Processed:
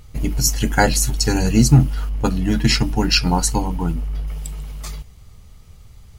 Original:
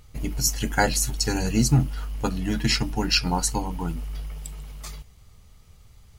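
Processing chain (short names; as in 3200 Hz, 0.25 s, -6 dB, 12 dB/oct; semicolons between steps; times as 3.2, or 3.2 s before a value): low shelf 420 Hz +3.5 dB; 2.09–4.28 mismatched tape noise reduction decoder only; gain +4.5 dB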